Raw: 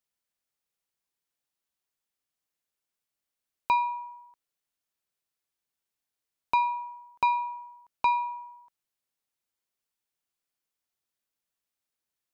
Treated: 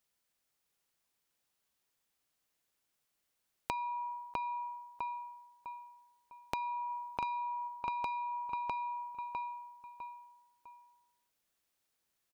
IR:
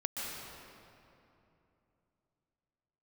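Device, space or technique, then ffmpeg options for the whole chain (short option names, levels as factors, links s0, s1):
serial compression, peaks first: -filter_complex "[0:a]asplit=3[s0][s1][s2];[s0]afade=t=out:st=6.89:d=0.02[s3];[s1]aecho=1:1:0.8:0.64,afade=t=in:st=6.89:d=0.02,afade=t=out:st=7.67:d=0.02[s4];[s2]afade=t=in:st=7.67:d=0.02[s5];[s3][s4][s5]amix=inputs=3:normalize=0,asplit=2[s6][s7];[s7]adelay=653,lowpass=f=3200:p=1,volume=0.501,asplit=2[s8][s9];[s9]adelay=653,lowpass=f=3200:p=1,volume=0.33,asplit=2[s10][s11];[s11]adelay=653,lowpass=f=3200:p=1,volume=0.33,asplit=2[s12][s13];[s13]adelay=653,lowpass=f=3200:p=1,volume=0.33[s14];[s6][s8][s10][s12][s14]amix=inputs=5:normalize=0,acompressor=threshold=0.0178:ratio=6,acompressor=threshold=0.00708:ratio=2,volume=1.78"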